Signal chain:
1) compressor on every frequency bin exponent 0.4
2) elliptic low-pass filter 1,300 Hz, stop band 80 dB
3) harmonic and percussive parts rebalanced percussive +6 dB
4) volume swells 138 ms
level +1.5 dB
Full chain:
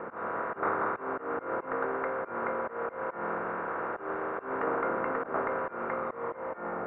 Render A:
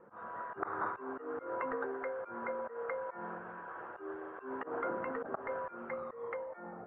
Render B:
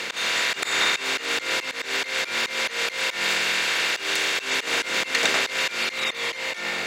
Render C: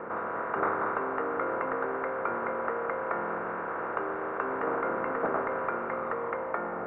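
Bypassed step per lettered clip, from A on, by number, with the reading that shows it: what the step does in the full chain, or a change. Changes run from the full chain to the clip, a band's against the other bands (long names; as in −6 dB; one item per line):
1, 500 Hz band +2.0 dB
2, 2 kHz band +15.0 dB
4, change in momentary loudness spread −2 LU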